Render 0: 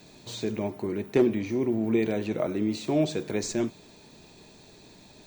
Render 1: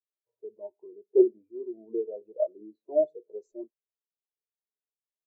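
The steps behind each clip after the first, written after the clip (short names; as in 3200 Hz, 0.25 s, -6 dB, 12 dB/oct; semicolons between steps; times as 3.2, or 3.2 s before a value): ten-band EQ 125 Hz -7 dB, 250 Hz -6 dB, 500 Hz +7 dB, 1000 Hz +9 dB, 2000 Hz -8 dB, 8000 Hz +8 dB, 16000 Hz -10 dB; low-pass opened by the level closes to 1000 Hz, open at -22 dBFS; spectral expander 2.5:1; gain -1.5 dB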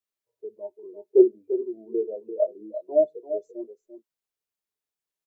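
echo 0.343 s -10.5 dB; gain +4 dB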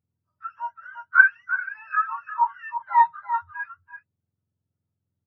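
spectrum mirrored in octaves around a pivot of 760 Hz; gain +5.5 dB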